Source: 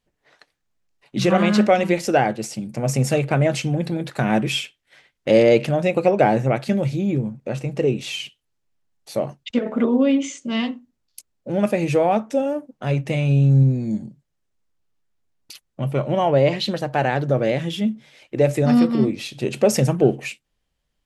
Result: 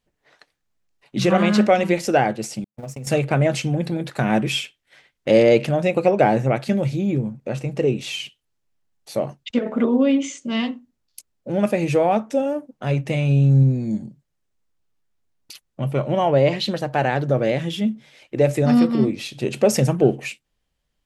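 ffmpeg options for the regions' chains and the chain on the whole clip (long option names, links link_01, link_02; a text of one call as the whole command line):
ffmpeg -i in.wav -filter_complex "[0:a]asettb=1/sr,asplit=3[link_01][link_02][link_03];[link_01]atrim=end=2.644[link_04];[link_02]atrim=start=2.64:end=3.07,asetpts=PTS-STARTPTS,afade=type=in:duration=0.004:curve=qsin,afade=type=out:start_time=0.426:duration=0.004:curve=qsin,aeval=exprs='val(0)+0.5*0.0188*sgn(val(0))':channel_layout=same,agate=range=-60dB:threshold=-23dB:ratio=16:release=100:detection=peak,acompressor=threshold=-29dB:ratio=12:attack=3.2:release=140:knee=1:detection=peak[link_05];[link_03]atrim=start=3.066[link_06];[link_04][link_05]acrossfade=duration=0.004:curve1=hsin:curve2=qsin[link_07];[link_07][link_06]acrossfade=duration=0.004:curve1=qsin:curve2=hsin" out.wav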